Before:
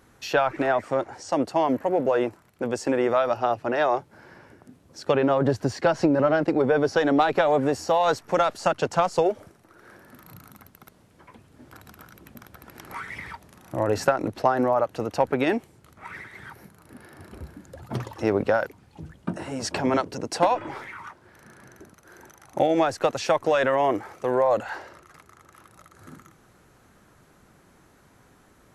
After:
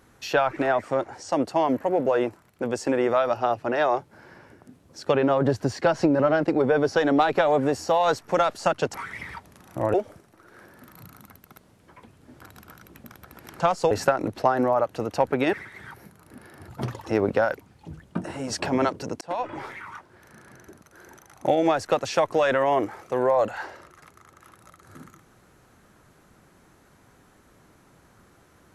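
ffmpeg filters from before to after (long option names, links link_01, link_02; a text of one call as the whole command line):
ffmpeg -i in.wav -filter_complex "[0:a]asplit=8[link_01][link_02][link_03][link_04][link_05][link_06][link_07][link_08];[link_01]atrim=end=8.942[link_09];[link_02]atrim=start=12.908:end=13.912[link_10];[link_03]atrim=start=9.248:end=12.912[link_11];[link_04]atrim=start=8.938:end=9.252[link_12];[link_05]atrim=start=13.908:end=15.532[link_13];[link_06]atrim=start=16.118:end=17.272[link_14];[link_07]atrim=start=17.798:end=20.33,asetpts=PTS-STARTPTS,afade=type=out:start_time=2.528:duration=0.004:curve=hsin[link_15];[link_08]atrim=start=20.33,asetpts=PTS-STARTPTS,afade=type=in:duration=0.36[link_16];[link_09][link_10]acrossfade=duration=0.004:curve1=hsin:curve2=hsin[link_17];[link_17][link_11]acrossfade=duration=0.004:curve1=hsin:curve2=hsin[link_18];[link_18][link_12]acrossfade=duration=0.004:curve1=hsin:curve2=hsin[link_19];[link_19][link_13]acrossfade=duration=0.004:curve1=hsin:curve2=hsin[link_20];[link_20][link_14]acrossfade=duration=0.004:curve1=hsin:curve2=hsin[link_21];[link_15][link_16]concat=n=2:v=0:a=1[link_22];[link_21][link_22]acrossfade=duration=0.004:curve1=hsin:curve2=hsin" out.wav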